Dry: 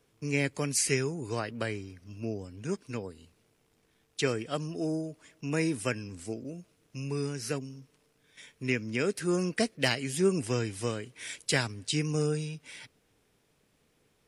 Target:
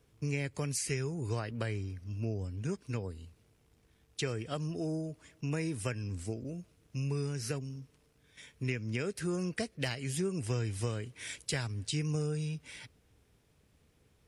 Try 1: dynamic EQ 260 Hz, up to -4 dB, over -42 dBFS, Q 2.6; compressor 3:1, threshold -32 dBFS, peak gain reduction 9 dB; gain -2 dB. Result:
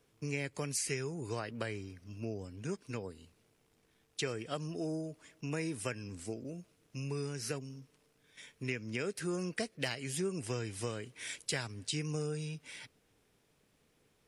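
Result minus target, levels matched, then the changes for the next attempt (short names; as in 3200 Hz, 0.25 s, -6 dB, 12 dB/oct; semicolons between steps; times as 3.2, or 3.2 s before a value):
125 Hz band -4.0 dB
add after compressor: bell 65 Hz +14.5 dB 1.8 oct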